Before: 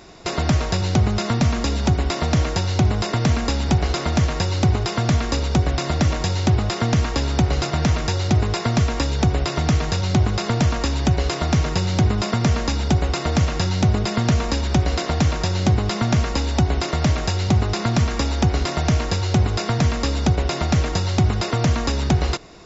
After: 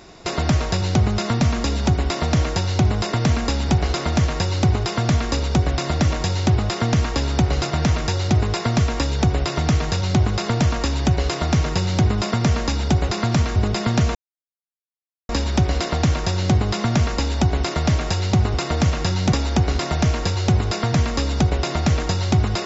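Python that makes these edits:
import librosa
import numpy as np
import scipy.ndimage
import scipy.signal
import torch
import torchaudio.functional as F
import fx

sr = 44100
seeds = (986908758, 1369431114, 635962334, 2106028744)

y = fx.edit(x, sr, fx.swap(start_s=13.09, length_s=0.78, other_s=17.71, other_length_s=0.47),
    fx.insert_silence(at_s=14.46, length_s=1.14), tone=tone)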